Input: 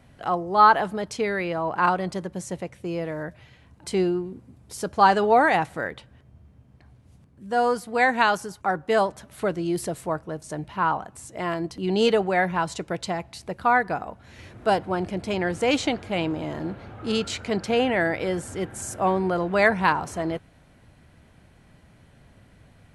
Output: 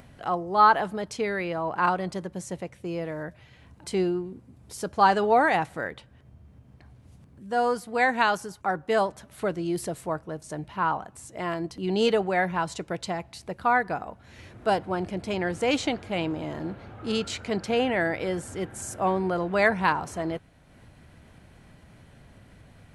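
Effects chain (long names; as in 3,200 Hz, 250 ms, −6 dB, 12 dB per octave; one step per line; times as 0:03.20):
upward compression, threshold −42 dBFS
level −2.5 dB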